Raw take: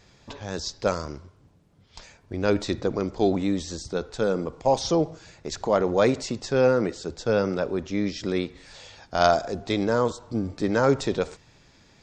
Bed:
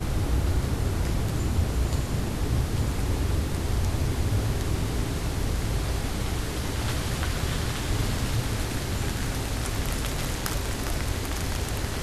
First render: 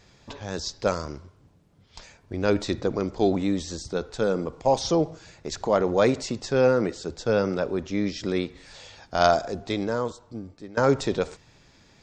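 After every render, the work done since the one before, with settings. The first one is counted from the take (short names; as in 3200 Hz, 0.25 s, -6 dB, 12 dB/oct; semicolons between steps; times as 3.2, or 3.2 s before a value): 9.37–10.77 fade out, to -21 dB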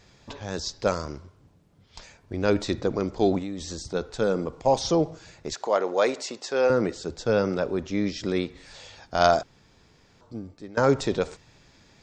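3.38–3.94 compressor 5:1, threshold -29 dBFS; 5.53–6.7 HPF 430 Hz; 9.43–10.21 room tone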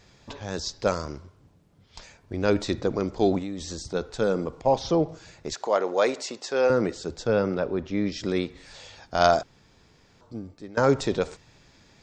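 4.61–5.09 air absorption 130 m; 7.27–8.12 air absorption 140 m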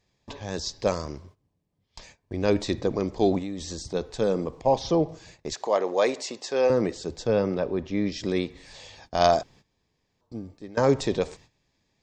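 gate -49 dBFS, range -16 dB; notch 1400 Hz, Q 5.1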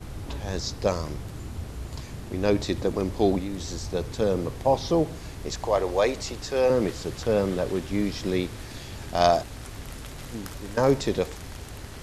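add bed -10.5 dB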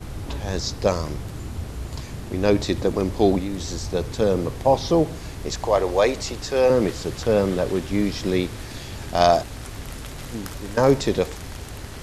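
gain +4 dB; limiter -3 dBFS, peak gain reduction 1.5 dB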